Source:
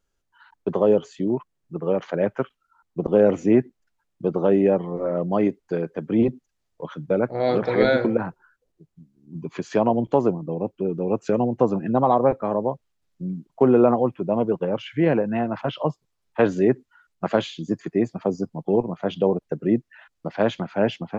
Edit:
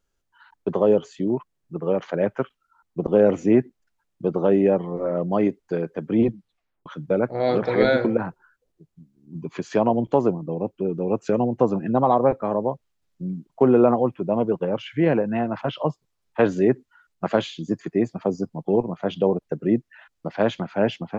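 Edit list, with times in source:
0:06.25: tape stop 0.61 s

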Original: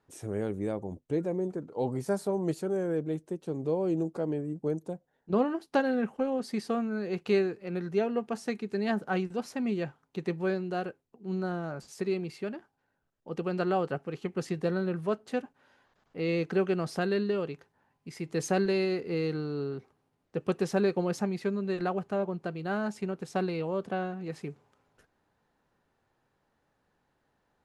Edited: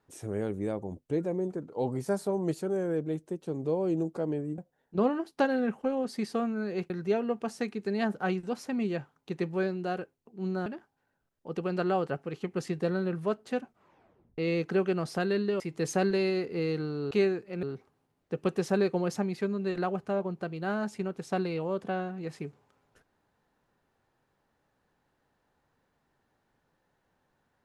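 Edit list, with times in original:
0:04.58–0:04.93: remove
0:07.25–0:07.77: move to 0:19.66
0:11.53–0:12.47: remove
0:15.42: tape stop 0.77 s
0:17.41–0:18.15: remove

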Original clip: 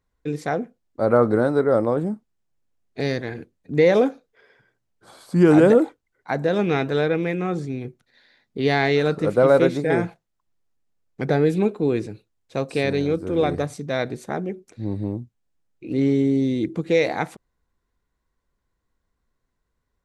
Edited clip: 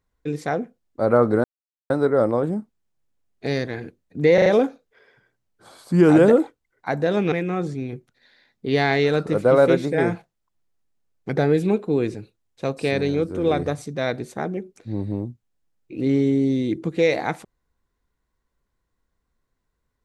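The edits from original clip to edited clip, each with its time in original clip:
0:01.44: splice in silence 0.46 s
0:03.88: stutter 0.04 s, 4 plays
0:06.74–0:07.24: remove

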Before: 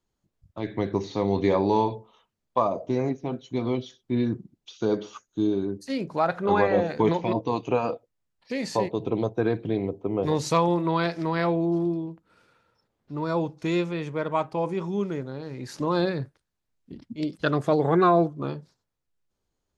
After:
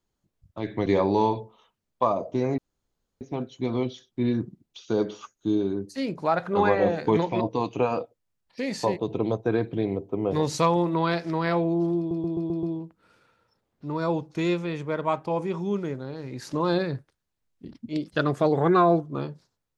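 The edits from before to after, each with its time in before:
0:00.86–0:01.41: remove
0:03.13: splice in room tone 0.63 s
0:11.90: stutter 0.13 s, 6 plays

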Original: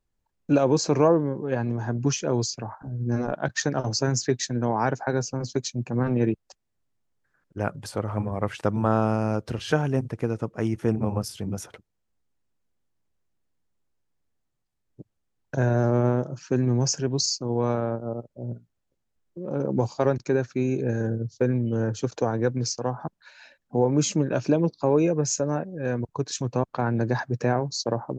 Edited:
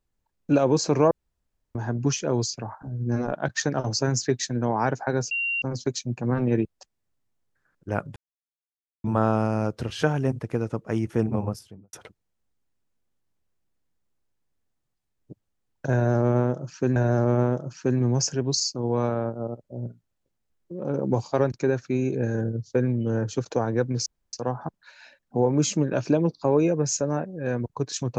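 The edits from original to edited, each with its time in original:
0:01.11–0:01.75: fill with room tone
0:05.31: insert tone 2,760 Hz −23.5 dBFS 0.31 s
0:07.85–0:08.73: silence
0:11.02–0:11.62: fade out and dull
0:15.62–0:16.65: repeat, 2 plays
0:22.72: splice in room tone 0.27 s

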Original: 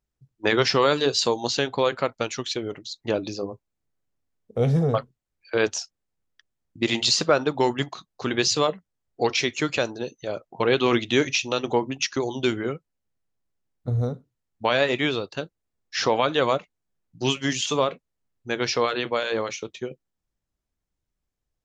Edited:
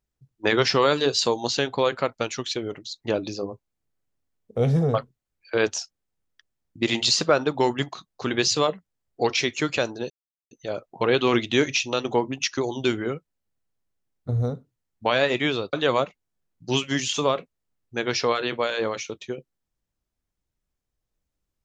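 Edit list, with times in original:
0:10.10: splice in silence 0.41 s
0:15.32–0:16.26: remove

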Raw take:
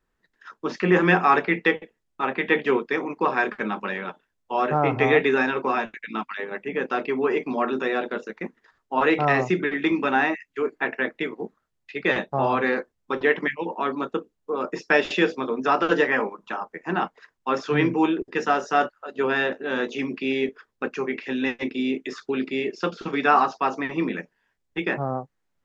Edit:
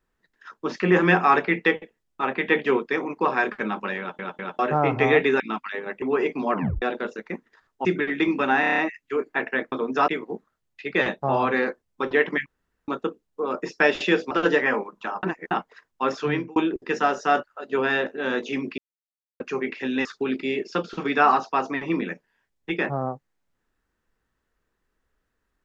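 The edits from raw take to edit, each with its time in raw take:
0:03.99: stutter in place 0.20 s, 3 plays
0:05.40–0:06.05: remove
0:06.67–0:07.13: remove
0:07.63: tape stop 0.30 s
0:08.96–0:09.49: remove
0:10.24: stutter 0.03 s, 7 plays
0:13.56–0:13.98: fill with room tone
0:15.41–0:15.77: move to 0:11.18
0:16.69–0:16.97: reverse
0:17.66–0:18.02: fade out
0:20.24–0:20.86: silence
0:21.51–0:22.13: remove

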